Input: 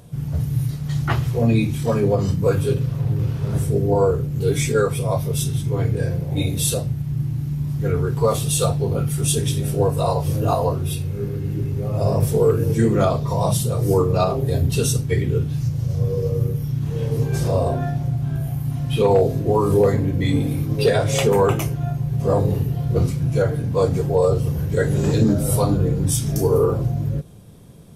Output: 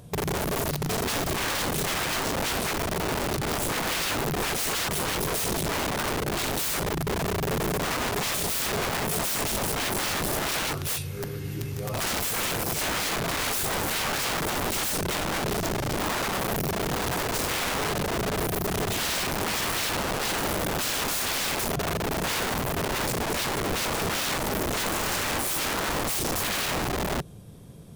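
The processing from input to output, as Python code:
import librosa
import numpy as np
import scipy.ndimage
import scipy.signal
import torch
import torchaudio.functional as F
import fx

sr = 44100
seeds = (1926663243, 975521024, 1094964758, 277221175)

y = fx.tilt_shelf(x, sr, db=-8.5, hz=740.0, at=(10.71, 12.82))
y = (np.mod(10.0 ** (21.5 / 20.0) * y + 1.0, 2.0) - 1.0) / 10.0 ** (21.5 / 20.0)
y = y * librosa.db_to_amplitude(-1.5)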